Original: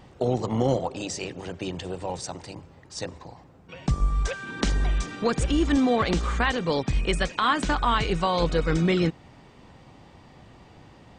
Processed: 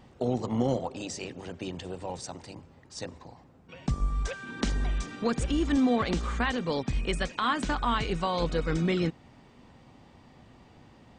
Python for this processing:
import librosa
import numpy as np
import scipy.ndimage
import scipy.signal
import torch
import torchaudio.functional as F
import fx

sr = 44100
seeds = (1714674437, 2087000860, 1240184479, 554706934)

y = fx.peak_eq(x, sr, hz=240.0, db=6.0, octaves=0.24)
y = y * 10.0 ** (-5.0 / 20.0)